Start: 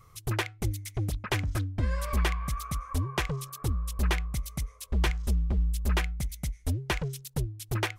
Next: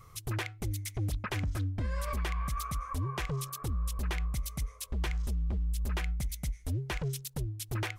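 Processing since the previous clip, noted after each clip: peak limiter -28 dBFS, peak gain reduction 10.5 dB; trim +2 dB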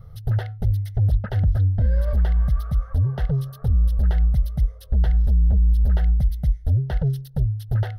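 tilt shelf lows +10 dB; static phaser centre 1.6 kHz, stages 8; trim +5.5 dB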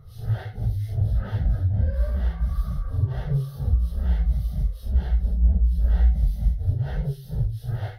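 phase randomisation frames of 200 ms; trim -3.5 dB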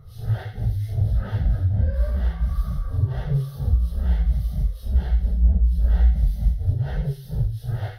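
feedback echo behind a high-pass 87 ms, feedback 51%, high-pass 1.8 kHz, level -9 dB; trim +1.5 dB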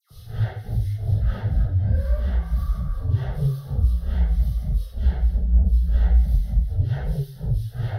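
phase dispersion lows, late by 109 ms, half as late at 1.7 kHz

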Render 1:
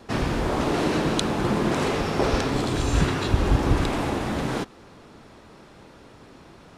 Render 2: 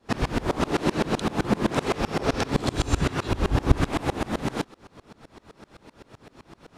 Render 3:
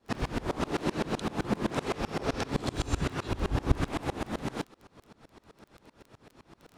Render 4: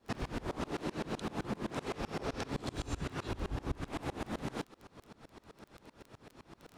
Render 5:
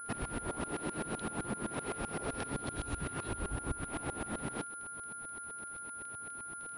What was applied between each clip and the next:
sawtooth tremolo in dB swelling 7.8 Hz, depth 26 dB; trim +6 dB
crackle 12 per s -34 dBFS; trim -6.5 dB
compression 4:1, threshold -35 dBFS, peak gain reduction 16 dB
whistle 1.4 kHz -43 dBFS; class-D stage that switches slowly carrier 10 kHz; trim -1 dB

